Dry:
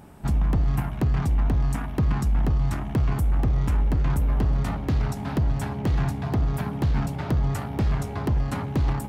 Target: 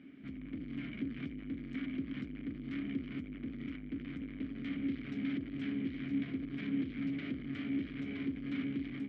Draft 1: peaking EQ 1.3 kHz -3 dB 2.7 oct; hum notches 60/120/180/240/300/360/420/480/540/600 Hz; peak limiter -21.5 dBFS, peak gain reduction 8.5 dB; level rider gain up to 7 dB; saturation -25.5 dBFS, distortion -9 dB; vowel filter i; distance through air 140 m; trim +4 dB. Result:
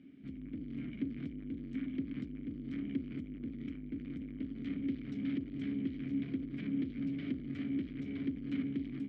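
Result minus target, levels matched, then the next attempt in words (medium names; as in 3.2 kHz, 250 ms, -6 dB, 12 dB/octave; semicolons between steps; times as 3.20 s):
1 kHz band -7.0 dB
peaking EQ 1.3 kHz +7.5 dB 2.7 oct; hum notches 60/120/180/240/300/360/420/480/540/600 Hz; peak limiter -21.5 dBFS, peak gain reduction 11 dB; level rider gain up to 7 dB; saturation -25.5 dBFS, distortion -10 dB; vowel filter i; distance through air 140 m; trim +4 dB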